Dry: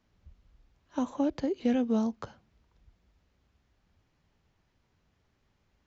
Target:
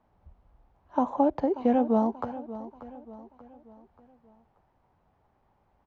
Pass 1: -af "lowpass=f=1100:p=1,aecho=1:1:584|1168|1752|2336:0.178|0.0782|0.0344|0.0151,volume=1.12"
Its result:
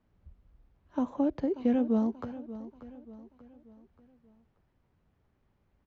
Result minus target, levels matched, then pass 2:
1 kHz band -9.5 dB
-af "lowpass=f=1100:p=1,equalizer=f=820:w=1.2:g=14.5,aecho=1:1:584|1168|1752|2336:0.178|0.0782|0.0344|0.0151,volume=1.12"

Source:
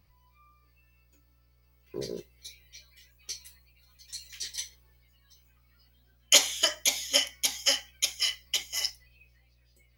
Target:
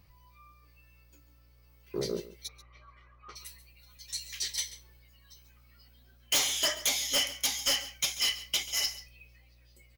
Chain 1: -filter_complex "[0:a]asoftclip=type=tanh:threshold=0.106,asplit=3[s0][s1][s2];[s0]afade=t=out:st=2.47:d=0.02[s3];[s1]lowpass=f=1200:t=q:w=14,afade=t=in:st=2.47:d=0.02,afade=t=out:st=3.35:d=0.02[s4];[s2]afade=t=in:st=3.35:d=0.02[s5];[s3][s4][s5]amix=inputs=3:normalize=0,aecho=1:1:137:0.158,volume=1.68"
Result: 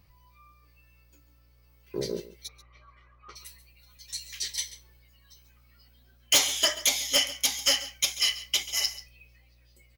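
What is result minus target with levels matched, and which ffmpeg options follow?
saturation: distortion -5 dB
-filter_complex "[0:a]asoftclip=type=tanh:threshold=0.0422,asplit=3[s0][s1][s2];[s0]afade=t=out:st=2.47:d=0.02[s3];[s1]lowpass=f=1200:t=q:w=14,afade=t=in:st=2.47:d=0.02,afade=t=out:st=3.35:d=0.02[s4];[s2]afade=t=in:st=3.35:d=0.02[s5];[s3][s4][s5]amix=inputs=3:normalize=0,aecho=1:1:137:0.158,volume=1.68"

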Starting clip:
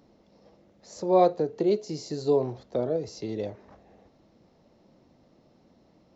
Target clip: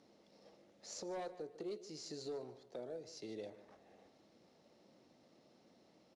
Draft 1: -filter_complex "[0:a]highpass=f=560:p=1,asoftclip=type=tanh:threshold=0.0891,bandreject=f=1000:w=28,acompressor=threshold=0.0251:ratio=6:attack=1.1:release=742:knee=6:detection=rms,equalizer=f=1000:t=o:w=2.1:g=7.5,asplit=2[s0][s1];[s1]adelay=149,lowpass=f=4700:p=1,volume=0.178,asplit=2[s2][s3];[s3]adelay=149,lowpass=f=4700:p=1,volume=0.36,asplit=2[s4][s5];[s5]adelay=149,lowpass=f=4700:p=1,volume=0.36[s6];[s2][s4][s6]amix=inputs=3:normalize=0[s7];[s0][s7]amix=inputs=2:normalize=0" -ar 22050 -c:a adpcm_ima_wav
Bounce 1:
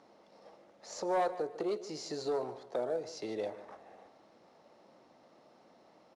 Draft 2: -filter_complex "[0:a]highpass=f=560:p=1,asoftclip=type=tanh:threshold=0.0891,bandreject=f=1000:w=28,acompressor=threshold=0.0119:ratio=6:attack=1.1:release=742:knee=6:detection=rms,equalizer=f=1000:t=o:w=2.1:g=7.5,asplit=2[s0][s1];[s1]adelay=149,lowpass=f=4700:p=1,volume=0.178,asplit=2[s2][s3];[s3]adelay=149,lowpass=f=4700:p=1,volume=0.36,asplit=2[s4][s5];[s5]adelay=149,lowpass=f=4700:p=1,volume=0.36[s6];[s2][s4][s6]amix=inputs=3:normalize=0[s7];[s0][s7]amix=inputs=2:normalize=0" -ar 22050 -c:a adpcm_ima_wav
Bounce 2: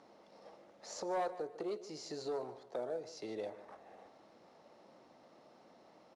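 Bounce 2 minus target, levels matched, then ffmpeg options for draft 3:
1 kHz band +5.0 dB
-filter_complex "[0:a]highpass=f=560:p=1,asoftclip=type=tanh:threshold=0.0891,bandreject=f=1000:w=28,acompressor=threshold=0.0119:ratio=6:attack=1.1:release=742:knee=6:detection=rms,equalizer=f=1000:t=o:w=2.1:g=-4.5,asplit=2[s0][s1];[s1]adelay=149,lowpass=f=4700:p=1,volume=0.178,asplit=2[s2][s3];[s3]adelay=149,lowpass=f=4700:p=1,volume=0.36,asplit=2[s4][s5];[s5]adelay=149,lowpass=f=4700:p=1,volume=0.36[s6];[s2][s4][s6]amix=inputs=3:normalize=0[s7];[s0][s7]amix=inputs=2:normalize=0" -ar 22050 -c:a adpcm_ima_wav

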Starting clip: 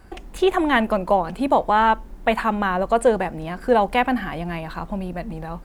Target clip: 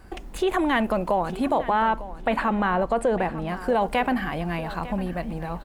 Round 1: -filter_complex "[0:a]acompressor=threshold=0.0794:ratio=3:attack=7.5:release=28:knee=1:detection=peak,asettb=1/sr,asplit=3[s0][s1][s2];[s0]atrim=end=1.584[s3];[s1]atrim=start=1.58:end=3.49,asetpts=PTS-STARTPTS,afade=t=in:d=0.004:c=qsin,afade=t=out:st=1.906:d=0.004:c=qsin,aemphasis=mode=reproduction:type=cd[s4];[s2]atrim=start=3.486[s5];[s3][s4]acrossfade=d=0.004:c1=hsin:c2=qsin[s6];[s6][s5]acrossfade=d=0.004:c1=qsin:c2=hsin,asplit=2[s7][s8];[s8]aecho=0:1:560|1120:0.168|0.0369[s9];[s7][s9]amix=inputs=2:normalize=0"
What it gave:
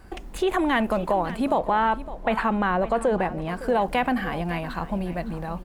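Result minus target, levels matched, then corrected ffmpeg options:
echo 342 ms early
-filter_complex "[0:a]acompressor=threshold=0.0794:ratio=3:attack=7.5:release=28:knee=1:detection=peak,asettb=1/sr,asplit=3[s0][s1][s2];[s0]atrim=end=1.584[s3];[s1]atrim=start=1.58:end=3.49,asetpts=PTS-STARTPTS,afade=t=in:d=0.004:c=qsin,afade=t=out:st=1.906:d=0.004:c=qsin,aemphasis=mode=reproduction:type=cd[s4];[s2]atrim=start=3.486[s5];[s3][s4]acrossfade=d=0.004:c1=hsin:c2=qsin[s6];[s6][s5]acrossfade=d=0.004:c1=qsin:c2=hsin,asplit=2[s7][s8];[s8]aecho=0:1:902|1804:0.168|0.0369[s9];[s7][s9]amix=inputs=2:normalize=0"

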